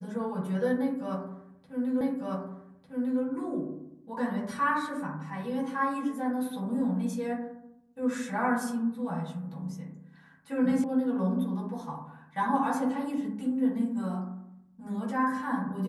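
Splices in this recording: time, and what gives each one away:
2.01 s: repeat of the last 1.2 s
10.84 s: sound stops dead

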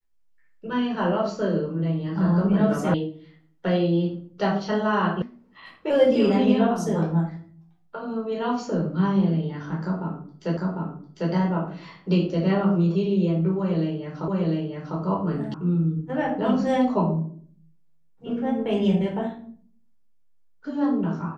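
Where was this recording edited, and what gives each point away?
2.94 s: sound stops dead
5.22 s: sound stops dead
10.57 s: repeat of the last 0.75 s
14.28 s: repeat of the last 0.7 s
15.54 s: sound stops dead

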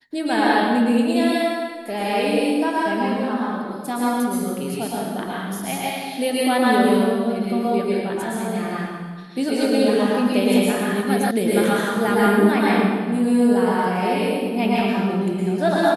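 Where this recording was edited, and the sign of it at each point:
11.31 s: sound stops dead

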